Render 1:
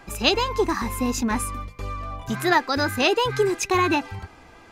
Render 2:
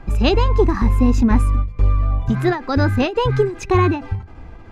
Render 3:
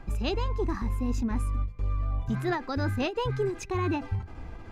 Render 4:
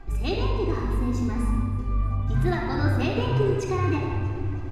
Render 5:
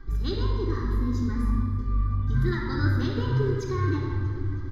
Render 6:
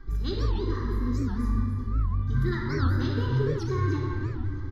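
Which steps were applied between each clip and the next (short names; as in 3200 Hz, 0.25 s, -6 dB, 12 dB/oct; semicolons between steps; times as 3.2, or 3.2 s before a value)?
RIAA curve playback; ending taper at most 140 dB/s; gain +2 dB
high shelf 5600 Hz +6 dB; reverse; compressor 6:1, threshold -22 dBFS, peak gain reduction 12.5 dB; reverse; gain -3.5 dB
feedback echo 0.32 s, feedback 54%, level -20 dB; shoebox room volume 3600 m³, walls mixed, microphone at 3.5 m; gain -2 dB
fixed phaser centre 2600 Hz, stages 6
echo 0.29 s -10.5 dB; record warp 78 rpm, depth 250 cents; gain -1.5 dB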